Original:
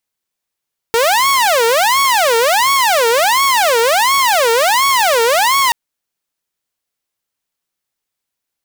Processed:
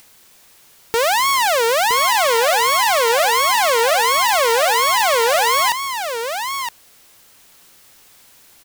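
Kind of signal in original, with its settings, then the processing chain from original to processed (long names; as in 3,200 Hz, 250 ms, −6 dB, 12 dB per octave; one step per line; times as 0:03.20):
siren wail 455–1,110 Hz 1.4 per second saw −7.5 dBFS 4.78 s
brickwall limiter −11.5 dBFS
upward compression, threshold −25 dBFS
single-tap delay 967 ms −7.5 dB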